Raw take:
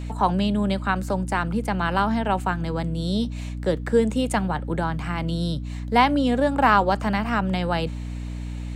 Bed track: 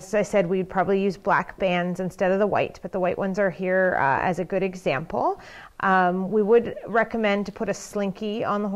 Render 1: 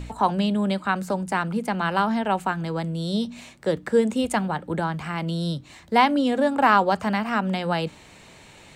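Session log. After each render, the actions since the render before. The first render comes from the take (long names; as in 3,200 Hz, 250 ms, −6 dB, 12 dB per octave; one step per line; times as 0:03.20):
hum removal 60 Hz, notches 5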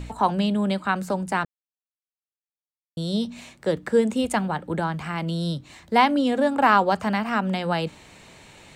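0:01.45–0:02.97: silence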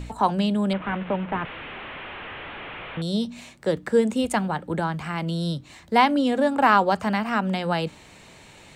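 0:00.73–0:03.02: linear delta modulator 16 kbit/s, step −30 dBFS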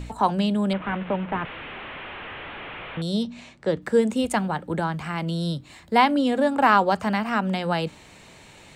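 0:03.23–0:03.82: high-frequency loss of the air 78 metres
0:05.46–0:06.52: notch filter 6,000 Hz, Q 8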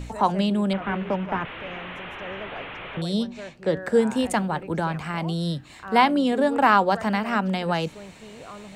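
mix in bed track −16.5 dB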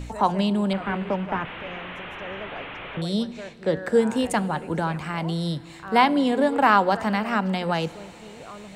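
feedback delay network reverb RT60 3.3 s, high-frequency decay 0.95×, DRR 17.5 dB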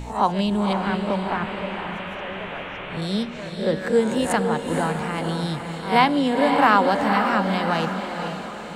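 peak hold with a rise ahead of every peak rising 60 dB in 0.32 s
feedback delay with all-pass diffusion 500 ms, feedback 46%, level −6 dB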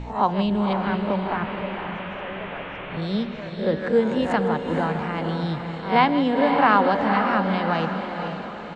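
high-frequency loss of the air 180 metres
single-tap delay 159 ms −15 dB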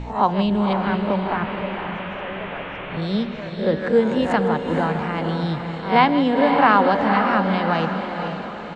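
level +2.5 dB
brickwall limiter −3 dBFS, peak gain reduction 1.5 dB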